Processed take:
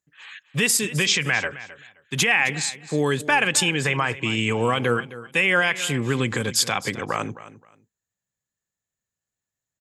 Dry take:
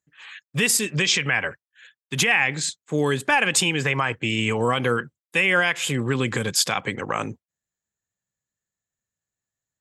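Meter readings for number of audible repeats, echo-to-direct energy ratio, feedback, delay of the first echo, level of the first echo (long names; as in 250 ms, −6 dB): 2, −16.0 dB, 21%, 263 ms, −16.0 dB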